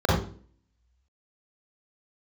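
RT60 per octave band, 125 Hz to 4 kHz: 0.55, 0.60, 0.50, 0.40, 0.35, 0.35 s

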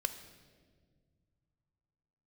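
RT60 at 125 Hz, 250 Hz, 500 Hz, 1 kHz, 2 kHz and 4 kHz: 3.6, 2.5, 2.1, 1.5, 1.3, 1.2 s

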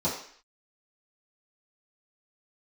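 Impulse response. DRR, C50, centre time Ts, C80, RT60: -10.5 dB, 5.5 dB, 34 ms, 9.0 dB, 0.55 s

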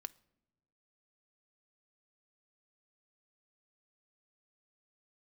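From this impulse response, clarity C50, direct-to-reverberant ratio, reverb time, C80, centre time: 23.0 dB, 16.0 dB, not exponential, 26.5 dB, 2 ms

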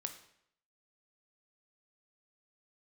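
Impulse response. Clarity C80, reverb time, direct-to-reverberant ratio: 13.0 dB, 0.70 s, 6.0 dB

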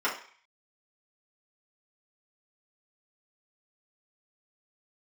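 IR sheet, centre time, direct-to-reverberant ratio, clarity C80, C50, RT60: 24 ms, -7.0 dB, 12.5 dB, 8.0 dB, 0.45 s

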